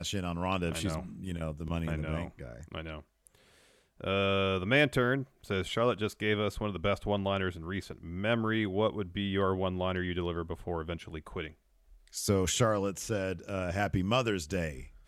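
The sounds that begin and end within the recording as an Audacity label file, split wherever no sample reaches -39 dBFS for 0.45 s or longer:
4.010000	11.480000	sound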